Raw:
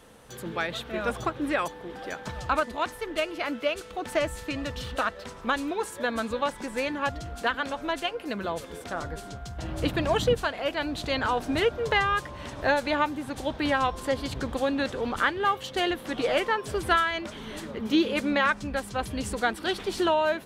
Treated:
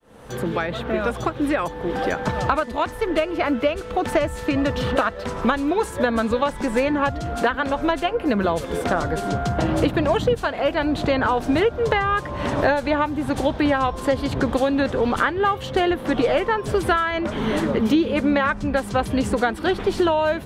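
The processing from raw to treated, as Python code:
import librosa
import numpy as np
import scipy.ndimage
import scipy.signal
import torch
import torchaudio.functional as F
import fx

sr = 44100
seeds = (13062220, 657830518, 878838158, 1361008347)

y = fx.fade_in_head(x, sr, length_s=4.79)
y = fx.high_shelf(y, sr, hz=2100.0, db=-9.5)
y = fx.band_squash(y, sr, depth_pct=100)
y = F.gain(torch.from_numpy(y), 7.5).numpy()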